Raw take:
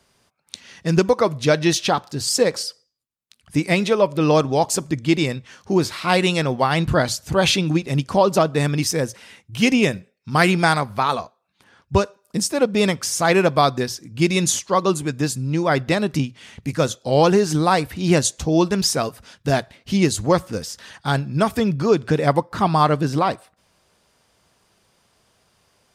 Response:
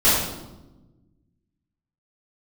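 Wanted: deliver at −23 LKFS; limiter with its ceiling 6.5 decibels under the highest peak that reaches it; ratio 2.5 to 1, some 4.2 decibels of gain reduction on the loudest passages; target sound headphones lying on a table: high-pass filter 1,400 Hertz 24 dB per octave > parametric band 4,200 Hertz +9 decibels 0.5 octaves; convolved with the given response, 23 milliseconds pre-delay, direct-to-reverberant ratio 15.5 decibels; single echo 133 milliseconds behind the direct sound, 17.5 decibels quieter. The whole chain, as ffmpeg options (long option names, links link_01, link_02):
-filter_complex "[0:a]acompressor=threshold=-17dB:ratio=2.5,alimiter=limit=-12.5dB:level=0:latency=1,aecho=1:1:133:0.133,asplit=2[link_01][link_02];[1:a]atrim=start_sample=2205,adelay=23[link_03];[link_02][link_03]afir=irnorm=-1:irlink=0,volume=-35.5dB[link_04];[link_01][link_04]amix=inputs=2:normalize=0,highpass=frequency=1400:width=0.5412,highpass=frequency=1400:width=1.3066,equalizer=frequency=4200:width_type=o:width=0.5:gain=9,volume=4dB"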